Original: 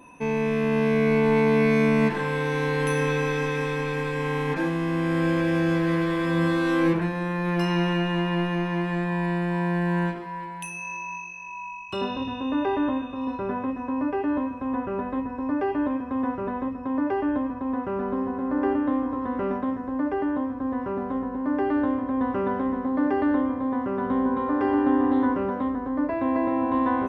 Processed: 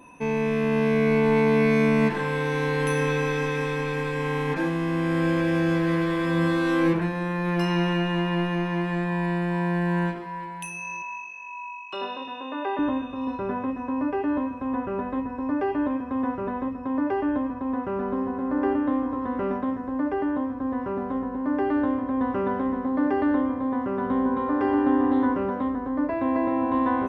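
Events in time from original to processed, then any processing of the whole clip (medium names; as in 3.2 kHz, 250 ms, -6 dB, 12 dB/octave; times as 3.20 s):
11.02–12.79 s: band-pass 480–4200 Hz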